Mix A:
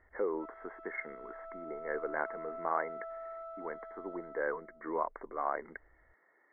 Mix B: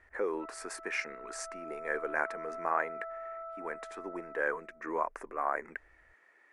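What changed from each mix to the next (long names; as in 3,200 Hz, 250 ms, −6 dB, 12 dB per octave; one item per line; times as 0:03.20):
speech: remove linear-phase brick-wall low-pass 2,200 Hz
master: add high shelf with overshoot 2,500 Hz −10 dB, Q 3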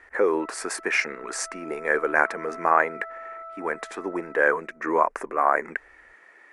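speech +11.5 dB
background: remove low-pass filter 1,100 Hz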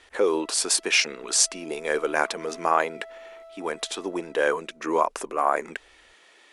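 background: add Butterworth band-reject 1,400 Hz, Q 3.6
master: add high shelf with overshoot 2,500 Hz +10 dB, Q 3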